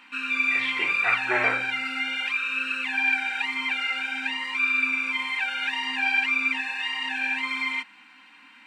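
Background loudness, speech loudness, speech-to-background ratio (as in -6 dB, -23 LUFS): -24.5 LUFS, -28.0 LUFS, -3.5 dB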